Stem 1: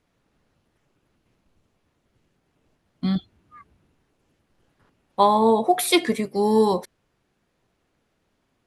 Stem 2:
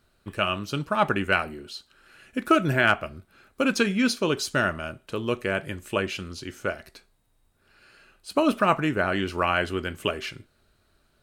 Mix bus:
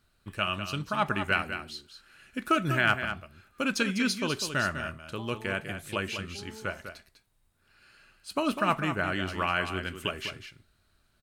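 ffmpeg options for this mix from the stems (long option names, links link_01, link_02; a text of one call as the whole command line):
ffmpeg -i stem1.wav -i stem2.wav -filter_complex "[0:a]acompressor=threshold=-27dB:ratio=6,volume=-19dB[link_01];[1:a]equalizer=frequency=450:width=0.74:gain=-6.5,volume=-2.5dB,asplit=2[link_02][link_03];[link_03]volume=-9dB,aecho=0:1:200:1[link_04];[link_01][link_02][link_04]amix=inputs=3:normalize=0" out.wav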